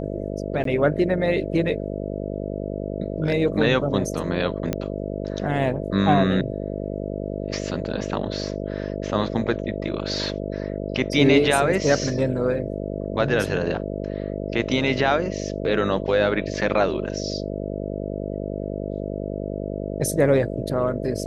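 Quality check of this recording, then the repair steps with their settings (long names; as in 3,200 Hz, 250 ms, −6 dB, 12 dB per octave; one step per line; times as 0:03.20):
mains buzz 50 Hz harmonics 13 −29 dBFS
0:00.64–0:00.65: drop-out 13 ms
0:04.73: click −10 dBFS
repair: click removal
hum removal 50 Hz, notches 13
repair the gap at 0:00.64, 13 ms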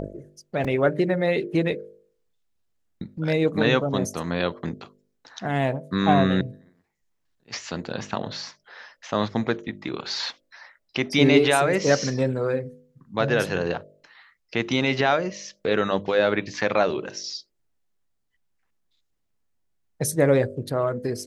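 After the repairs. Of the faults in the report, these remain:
none of them is left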